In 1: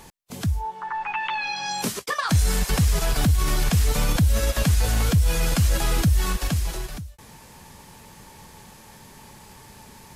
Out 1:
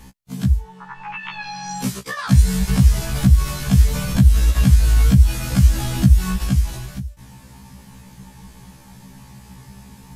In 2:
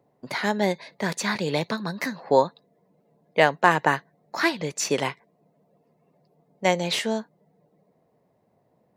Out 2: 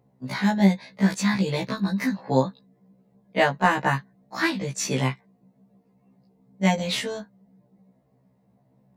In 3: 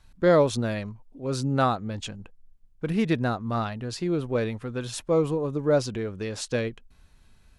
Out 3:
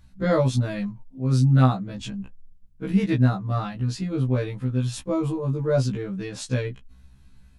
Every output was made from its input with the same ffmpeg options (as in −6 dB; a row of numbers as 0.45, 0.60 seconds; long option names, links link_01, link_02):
-af "lowshelf=frequency=280:width_type=q:width=1.5:gain=8,afftfilt=real='re*1.73*eq(mod(b,3),0)':imag='im*1.73*eq(mod(b,3),0)':win_size=2048:overlap=0.75,volume=1dB"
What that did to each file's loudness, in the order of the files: +6.0, +0.5, +2.5 LU